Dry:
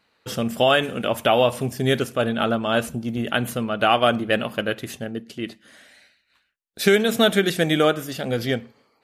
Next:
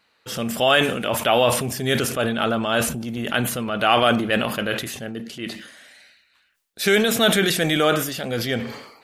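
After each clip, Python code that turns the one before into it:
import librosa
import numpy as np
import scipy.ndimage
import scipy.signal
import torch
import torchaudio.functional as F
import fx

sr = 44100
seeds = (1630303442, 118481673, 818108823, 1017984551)

y = fx.tilt_shelf(x, sr, db=-3.0, hz=660.0)
y = fx.transient(y, sr, attack_db=-3, sustain_db=6)
y = fx.sustainer(y, sr, db_per_s=67.0)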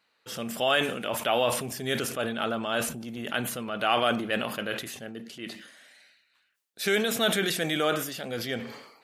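y = fx.highpass(x, sr, hz=160.0, slope=6)
y = y * 10.0 ** (-7.0 / 20.0)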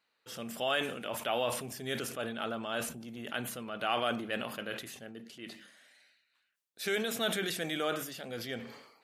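y = fx.hum_notches(x, sr, base_hz=50, count=4)
y = y * 10.0 ** (-7.0 / 20.0)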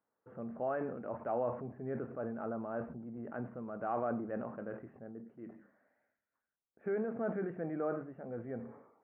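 y = scipy.ndimage.gaussian_filter1d(x, 7.4, mode='constant')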